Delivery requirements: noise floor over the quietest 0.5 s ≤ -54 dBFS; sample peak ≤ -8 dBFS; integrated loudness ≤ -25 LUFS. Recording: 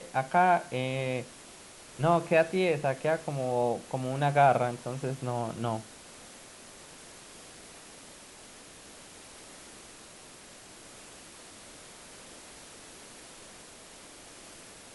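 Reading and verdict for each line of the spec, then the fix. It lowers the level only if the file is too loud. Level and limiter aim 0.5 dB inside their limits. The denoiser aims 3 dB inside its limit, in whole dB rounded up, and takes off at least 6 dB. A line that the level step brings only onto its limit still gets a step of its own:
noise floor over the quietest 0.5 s -50 dBFS: fail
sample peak -11.0 dBFS: pass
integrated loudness -28.5 LUFS: pass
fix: noise reduction 7 dB, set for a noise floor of -50 dBFS

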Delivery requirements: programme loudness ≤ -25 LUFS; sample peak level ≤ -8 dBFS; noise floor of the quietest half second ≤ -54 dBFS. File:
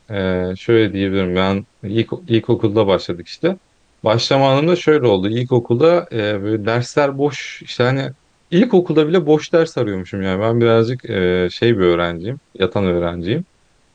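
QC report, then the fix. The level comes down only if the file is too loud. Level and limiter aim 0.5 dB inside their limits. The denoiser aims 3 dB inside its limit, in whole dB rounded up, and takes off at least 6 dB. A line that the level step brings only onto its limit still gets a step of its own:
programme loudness -17.0 LUFS: fail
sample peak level -2.5 dBFS: fail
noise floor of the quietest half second -56 dBFS: pass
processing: trim -8.5 dB

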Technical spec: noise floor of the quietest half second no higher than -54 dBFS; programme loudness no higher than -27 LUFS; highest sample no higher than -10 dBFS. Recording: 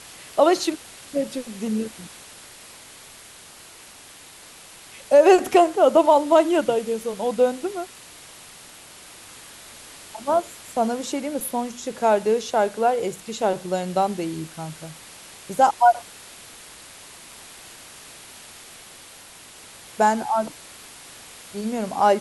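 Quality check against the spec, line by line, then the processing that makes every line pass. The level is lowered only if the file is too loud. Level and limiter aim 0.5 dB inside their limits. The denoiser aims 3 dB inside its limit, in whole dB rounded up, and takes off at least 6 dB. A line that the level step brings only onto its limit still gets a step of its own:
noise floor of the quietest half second -45 dBFS: fail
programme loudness -21.5 LUFS: fail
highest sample -4.0 dBFS: fail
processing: noise reduction 6 dB, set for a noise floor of -45 dBFS; trim -6 dB; peak limiter -10.5 dBFS

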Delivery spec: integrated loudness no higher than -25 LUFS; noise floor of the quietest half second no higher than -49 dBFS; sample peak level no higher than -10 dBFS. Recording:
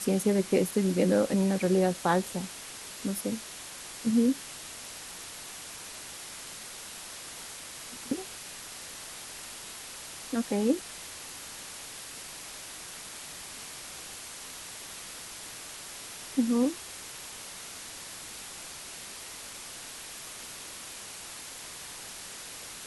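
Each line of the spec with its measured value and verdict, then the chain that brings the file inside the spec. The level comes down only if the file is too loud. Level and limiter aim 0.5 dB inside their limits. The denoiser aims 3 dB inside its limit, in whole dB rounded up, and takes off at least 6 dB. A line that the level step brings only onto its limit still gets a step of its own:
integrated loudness -33.5 LUFS: pass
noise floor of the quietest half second -43 dBFS: fail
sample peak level -11.5 dBFS: pass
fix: noise reduction 9 dB, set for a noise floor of -43 dBFS

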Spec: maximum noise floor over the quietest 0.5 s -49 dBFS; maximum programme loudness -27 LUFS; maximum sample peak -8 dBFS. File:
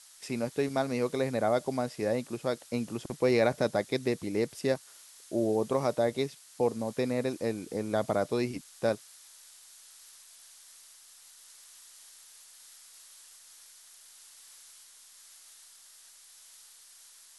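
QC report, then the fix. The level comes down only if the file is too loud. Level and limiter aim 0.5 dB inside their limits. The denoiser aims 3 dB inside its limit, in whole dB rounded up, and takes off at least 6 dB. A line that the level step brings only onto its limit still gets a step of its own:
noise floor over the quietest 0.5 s -55 dBFS: pass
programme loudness -31.0 LUFS: pass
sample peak -12.5 dBFS: pass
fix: none needed

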